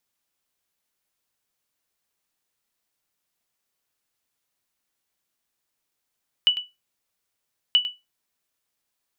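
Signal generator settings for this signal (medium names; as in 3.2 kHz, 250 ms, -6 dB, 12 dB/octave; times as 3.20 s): sonar ping 2.96 kHz, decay 0.21 s, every 1.28 s, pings 2, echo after 0.10 s, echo -13 dB -9.5 dBFS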